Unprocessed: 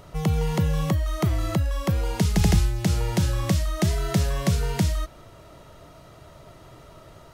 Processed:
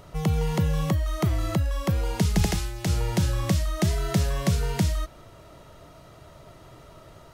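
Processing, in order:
0:02.45–0:02.87: parametric band 86 Hz −10 dB 2.8 octaves
level −1 dB

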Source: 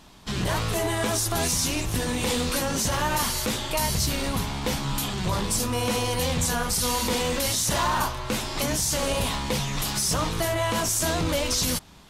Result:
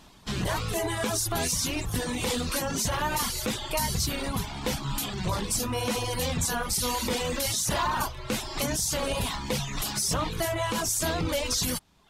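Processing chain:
reverb reduction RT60 0.79 s
level −1.5 dB

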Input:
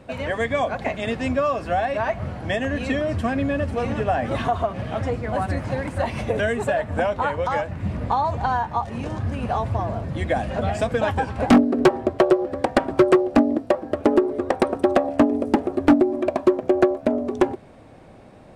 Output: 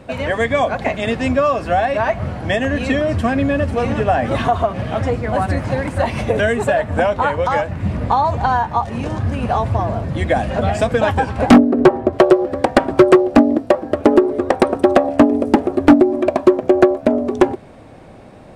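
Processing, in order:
0:11.57–0:12.13: high-shelf EQ 2,600 Hz −10.5 dB
level +6 dB

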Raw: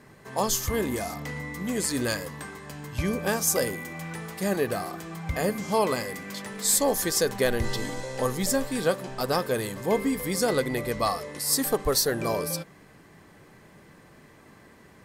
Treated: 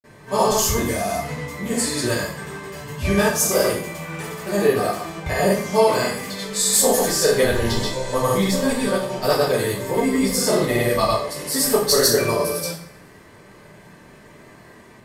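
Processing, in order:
granular cloud, pitch spread up and down by 0 semitones
coupled-rooms reverb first 0.48 s, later 1.8 s, from −27 dB, DRR −8 dB

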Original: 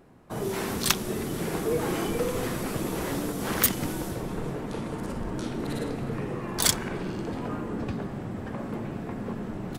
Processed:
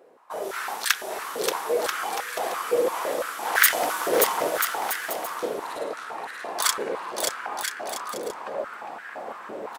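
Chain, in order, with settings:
0:03.55–0:04.48: leveller curve on the samples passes 2
on a send: bouncing-ball delay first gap 580 ms, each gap 0.7×, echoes 5
on the sum: high-pass on a step sequencer 5.9 Hz 490–1,600 Hz
level −1.5 dB

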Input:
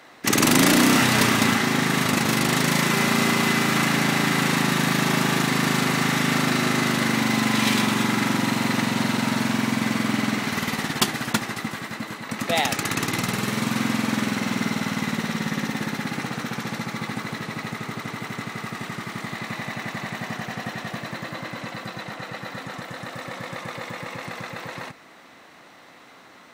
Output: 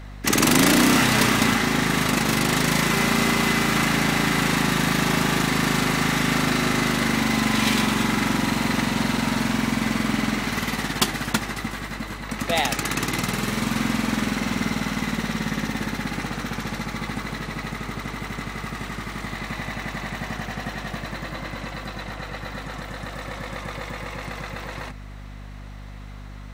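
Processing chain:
mains hum 50 Hz, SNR 14 dB

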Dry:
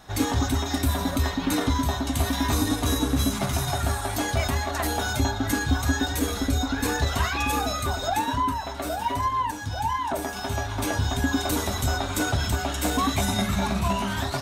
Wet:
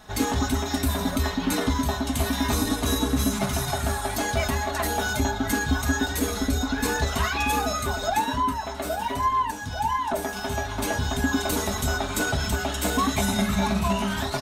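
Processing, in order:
comb filter 4.7 ms, depth 43%

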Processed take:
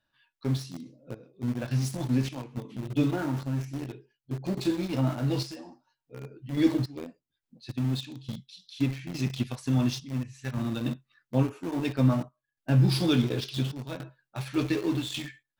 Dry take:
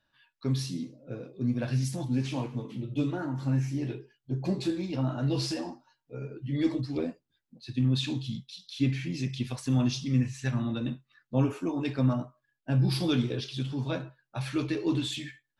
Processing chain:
sample-and-hold tremolo, depth 70%
in parallel at −4 dB: centre clipping without the shift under −34 dBFS

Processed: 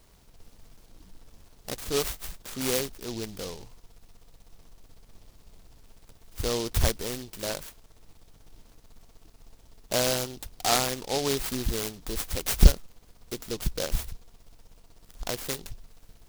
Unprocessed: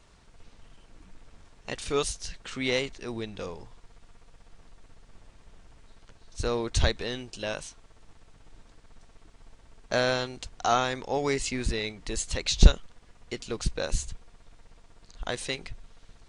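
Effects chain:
short delay modulated by noise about 4,300 Hz, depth 0.15 ms

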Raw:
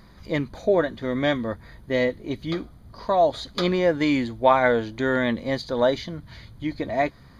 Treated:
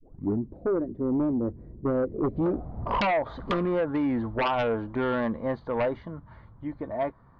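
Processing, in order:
turntable start at the beginning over 0.49 s
source passing by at 0:03.14, 9 m/s, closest 2.7 metres
downward compressor 16 to 1, threshold −35 dBFS, peak gain reduction 21 dB
low-pass filter sweep 360 Hz → 1,100 Hz, 0:01.86–0:03.15
sine wavefolder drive 14 dB, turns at −18 dBFS
level −3 dB

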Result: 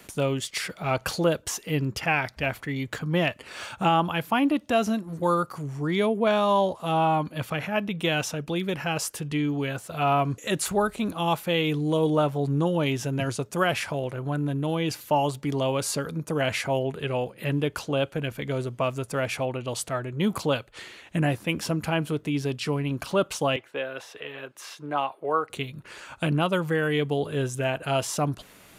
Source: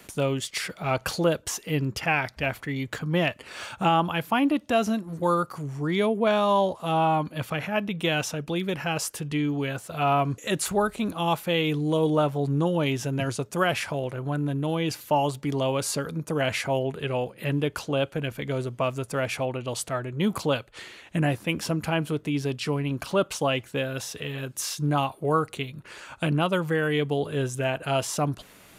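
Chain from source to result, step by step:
0:23.56–0:25.50: three-way crossover with the lows and the highs turned down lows −19 dB, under 350 Hz, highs −15 dB, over 3,200 Hz

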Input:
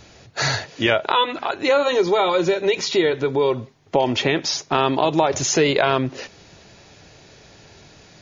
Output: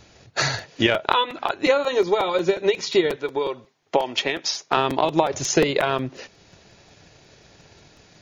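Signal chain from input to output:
0:03.16–0:04.77: high-pass filter 550 Hz 6 dB per octave
transient designer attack +8 dB, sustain −2 dB
regular buffer underruns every 0.18 s, samples 256, repeat, from 0:00.40
level −4.5 dB

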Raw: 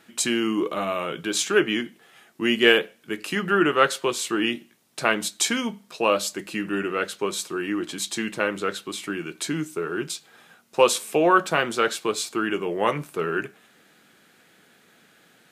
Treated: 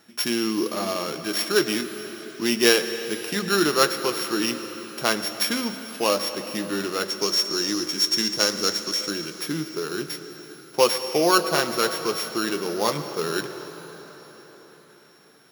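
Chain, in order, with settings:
samples sorted by size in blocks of 8 samples
0:07.10–0:09.11: parametric band 6,000 Hz +13 dB 0.82 octaves
convolution reverb RT60 4.9 s, pre-delay 88 ms, DRR 9 dB
level −1 dB

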